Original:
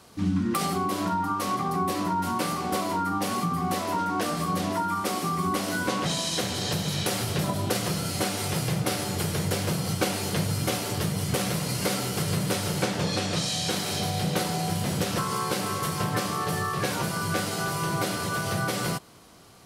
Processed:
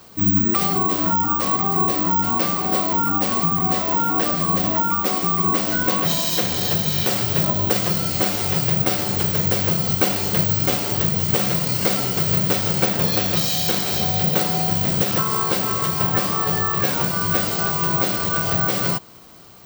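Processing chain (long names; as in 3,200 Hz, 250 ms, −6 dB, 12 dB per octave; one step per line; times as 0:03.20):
Butterworth low-pass 9,300 Hz 48 dB per octave
bad sample-rate conversion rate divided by 2×, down none, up zero stuff
level +4.5 dB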